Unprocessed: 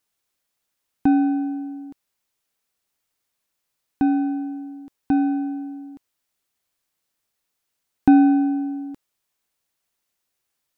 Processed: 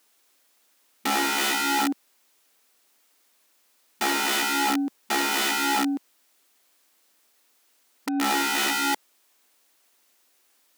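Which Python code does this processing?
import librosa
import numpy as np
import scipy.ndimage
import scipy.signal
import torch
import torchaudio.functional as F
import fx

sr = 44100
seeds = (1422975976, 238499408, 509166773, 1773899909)

y = fx.over_compress(x, sr, threshold_db=-25.0, ratio=-1.0)
y = (np.mod(10.0 ** (28.0 / 20.0) * y + 1.0, 2.0) - 1.0) / 10.0 ** (28.0 / 20.0)
y = fx.brickwall_highpass(y, sr, low_hz=210.0)
y = y * 10.0 ** (8.5 / 20.0)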